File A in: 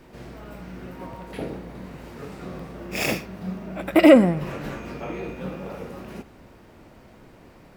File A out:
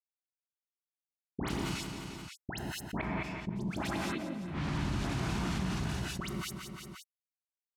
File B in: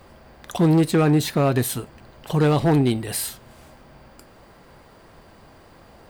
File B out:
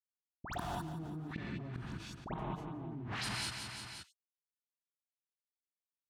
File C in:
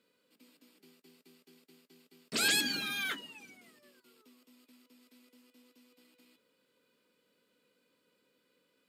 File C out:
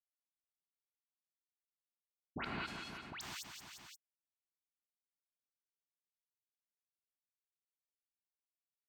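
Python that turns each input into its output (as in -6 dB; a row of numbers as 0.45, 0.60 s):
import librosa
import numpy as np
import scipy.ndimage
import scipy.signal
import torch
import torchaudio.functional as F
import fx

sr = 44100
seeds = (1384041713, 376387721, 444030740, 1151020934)

y = fx.delta_hold(x, sr, step_db=-24.5)
y = scipy.signal.sosfilt(scipy.signal.butter(2, 63.0, 'highpass', fs=sr, output='sos'), y)
y = fx.env_lowpass_down(y, sr, base_hz=840.0, full_db=-16.0)
y = fx.peak_eq(y, sr, hz=500.0, db=-14.5, octaves=0.6)
y = fx.dispersion(y, sr, late='highs', ms=97.0, hz=1900.0)
y = fx.gate_flip(y, sr, shuts_db=-23.0, range_db=-33)
y = fx.echo_feedback(y, sr, ms=175, feedback_pct=44, wet_db=-19.0)
y = fx.rev_gated(y, sr, seeds[0], gate_ms=230, shape='rising', drr_db=-2.5)
y = fx.env_flatten(y, sr, amount_pct=70)
y = y * librosa.db_to_amplitude(-6.0)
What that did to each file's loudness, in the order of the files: -14.0, -21.5, -14.5 LU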